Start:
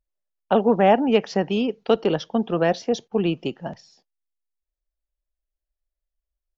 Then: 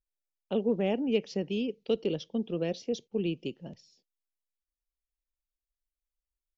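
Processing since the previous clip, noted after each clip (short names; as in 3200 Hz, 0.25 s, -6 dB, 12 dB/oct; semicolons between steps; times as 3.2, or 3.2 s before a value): band shelf 1100 Hz -14 dB; gain -8.5 dB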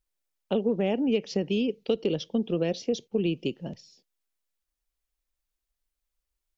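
compressor 4:1, threshold -29 dBFS, peak gain reduction 7 dB; gain +7 dB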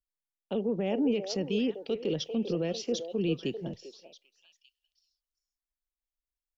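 limiter -21.5 dBFS, peak gain reduction 8.5 dB; delay with a stepping band-pass 0.395 s, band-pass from 560 Hz, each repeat 1.4 oct, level -4.5 dB; three-band expander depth 40%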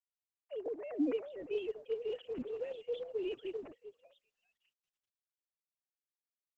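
sine-wave speech; gain -8 dB; Opus 12 kbps 48000 Hz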